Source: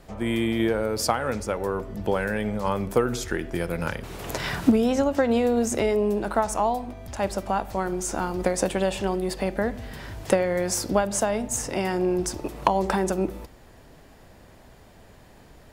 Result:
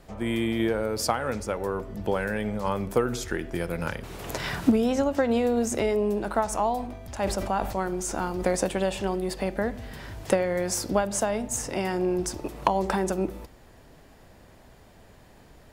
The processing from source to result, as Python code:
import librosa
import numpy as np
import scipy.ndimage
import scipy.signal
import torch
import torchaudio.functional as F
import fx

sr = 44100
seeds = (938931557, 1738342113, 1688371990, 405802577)

y = fx.sustainer(x, sr, db_per_s=65.0, at=(6.52, 8.55), fade=0.02)
y = y * 10.0 ** (-2.0 / 20.0)